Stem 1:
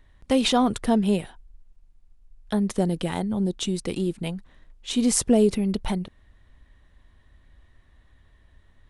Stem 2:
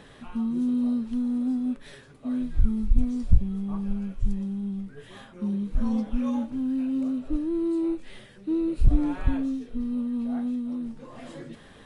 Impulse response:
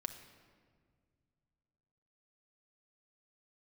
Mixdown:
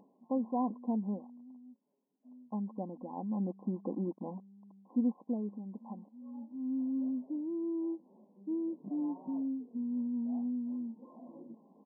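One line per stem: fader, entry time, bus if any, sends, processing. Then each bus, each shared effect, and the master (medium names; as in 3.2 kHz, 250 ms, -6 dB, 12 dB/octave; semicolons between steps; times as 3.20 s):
3.05 s -14 dB -> 3.59 s -6 dB -> 4.81 s -6 dB -> 5.34 s -18.5 dB, 0.00 s, no send, comb 3.8 ms, depth 50%; small samples zeroed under -38.5 dBFS
-12.5 dB, 0.00 s, no send, tilt EQ -3 dB/octave; auto duck -20 dB, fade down 0.45 s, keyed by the first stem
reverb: none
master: brick-wall FIR band-pass 180–1100 Hz; comb 1.1 ms, depth 34%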